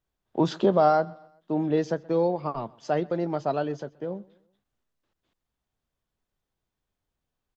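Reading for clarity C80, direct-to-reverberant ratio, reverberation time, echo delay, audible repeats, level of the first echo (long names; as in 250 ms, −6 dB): no reverb audible, no reverb audible, no reverb audible, 127 ms, 2, −24.0 dB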